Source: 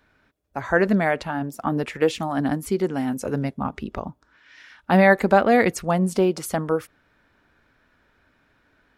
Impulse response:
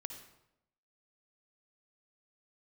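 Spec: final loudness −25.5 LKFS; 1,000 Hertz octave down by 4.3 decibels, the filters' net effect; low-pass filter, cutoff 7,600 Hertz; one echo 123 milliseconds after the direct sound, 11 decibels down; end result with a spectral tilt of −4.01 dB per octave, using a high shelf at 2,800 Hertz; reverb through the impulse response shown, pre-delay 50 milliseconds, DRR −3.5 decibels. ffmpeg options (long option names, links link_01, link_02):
-filter_complex "[0:a]lowpass=7600,equalizer=frequency=1000:width_type=o:gain=-6,highshelf=frequency=2800:gain=-4.5,aecho=1:1:123:0.282,asplit=2[link_01][link_02];[1:a]atrim=start_sample=2205,adelay=50[link_03];[link_02][link_03]afir=irnorm=-1:irlink=0,volume=6dB[link_04];[link_01][link_04]amix=inputs=2:normalize=0,volume=-7dB"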